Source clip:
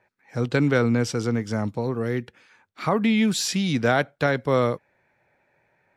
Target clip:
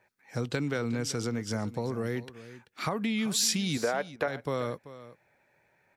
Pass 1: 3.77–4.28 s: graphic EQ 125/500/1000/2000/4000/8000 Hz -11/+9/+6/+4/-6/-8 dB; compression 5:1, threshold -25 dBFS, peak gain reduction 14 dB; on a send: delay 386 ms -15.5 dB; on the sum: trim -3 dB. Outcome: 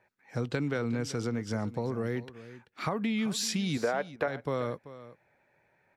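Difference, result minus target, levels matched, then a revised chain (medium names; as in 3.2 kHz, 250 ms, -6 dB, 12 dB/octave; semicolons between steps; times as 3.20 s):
8 kHz band -5.5 dB
3.77–4.28 s: graphic EQ 125/500/1000/2000/4000/8000 Hz -11/+9/+6/+4/-6/-8 dB; compression 5:1, threshold -25 dBFS, peak gain reduction 14 dB; treble shelf 4.4 kHz +9.5 dB; on a send: delay 386 ms -15.5 dB; on the sum: trim -3 dB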